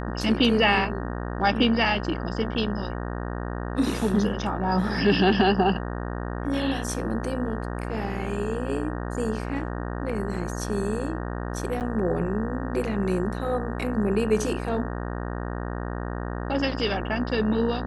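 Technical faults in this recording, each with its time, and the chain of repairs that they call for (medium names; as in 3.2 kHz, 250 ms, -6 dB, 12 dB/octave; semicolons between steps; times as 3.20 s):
buzz 60 Hz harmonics 31 -31 dBFS
11.80–11.81 s: dropout 8.8 ms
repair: de-hum 60 Hz, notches 31; interpolate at 11.80 s, 8.8 ms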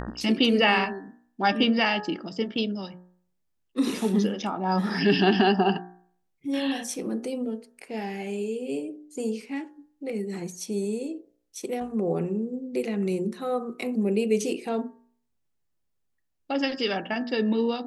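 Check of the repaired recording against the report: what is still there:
nothing left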